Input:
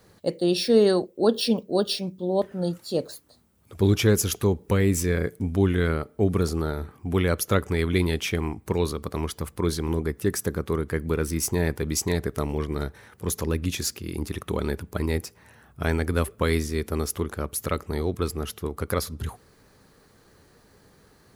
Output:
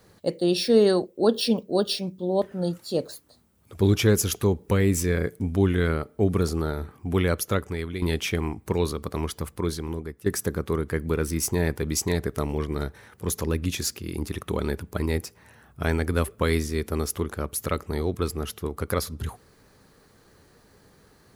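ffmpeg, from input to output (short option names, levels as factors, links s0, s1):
-filter_complex "[0:a]asplit=3[s0][s1][s2];[s0]atrim=end=8.02,asetpts=PTS-STARTPTS,afade=t=out:st=7.26:d=0.76:silence=0.266073[s3];[s1]atrim=start=8.02:end=10.26,asetpts=PTS-STARTPTS,afade=t=in:d=0.004:c=hsin:silence=0.266073,afade=t=out:st=1.38:d=0.86:silence=0.223872[s4];[s2]atrim=start=10.26,asetpts=PTS-STARTPTS,afade=t=in:d=0.004:c=hsin:silence=0.223872[s5];[s3][s4][s5]concat=n=3:v=0:a=1"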